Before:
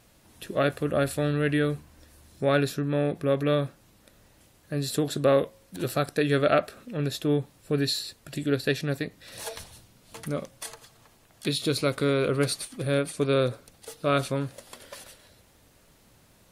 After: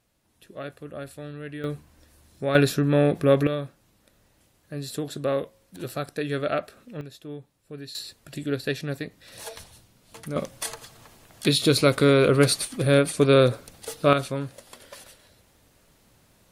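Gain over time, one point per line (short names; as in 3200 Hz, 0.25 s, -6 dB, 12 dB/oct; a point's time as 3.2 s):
-12 dB
from 1.64 s -2.5 dB
from 2.55 s +6 dB
from 3.47 s -4.5 dB
from 7.01 s -13.5 dB
from 7.95 s -2 dB
from 10.36 s +6.5 dB
from 14.13 s -1 dB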